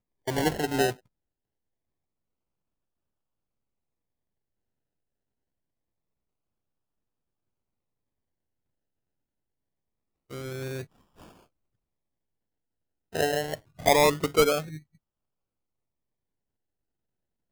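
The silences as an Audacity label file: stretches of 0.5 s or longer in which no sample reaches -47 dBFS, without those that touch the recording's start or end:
0.950000	10.310000	silence
11.310000	13.130000	silence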